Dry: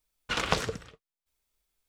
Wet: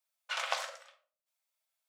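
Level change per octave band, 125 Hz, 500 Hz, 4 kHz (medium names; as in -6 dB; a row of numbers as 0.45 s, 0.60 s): under -40 dB, -10.0 dB, -5.0 dB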